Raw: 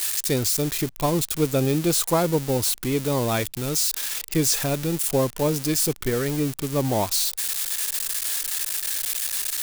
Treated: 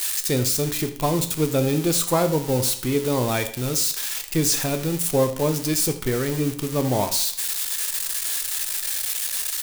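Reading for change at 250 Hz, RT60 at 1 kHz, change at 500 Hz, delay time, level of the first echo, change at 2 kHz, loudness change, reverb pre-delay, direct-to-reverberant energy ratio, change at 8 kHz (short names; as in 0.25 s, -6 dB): +0.5 dB, 0.55 s, +1.0 dB, 82 ms, -16.5 dB, +1.0 dB, +0.5 dB, 8 ms, 6.5 dB, +0.5 dB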